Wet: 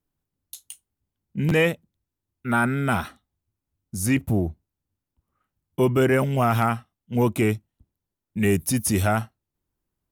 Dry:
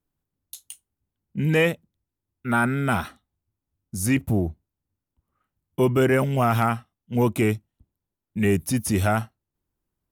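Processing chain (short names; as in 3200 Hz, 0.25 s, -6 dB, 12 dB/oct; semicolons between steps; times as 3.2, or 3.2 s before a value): 8.43–9.02 high shelf 5000 Hz +5.5 dB; stuck buffer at 1.48, samples 512, times 2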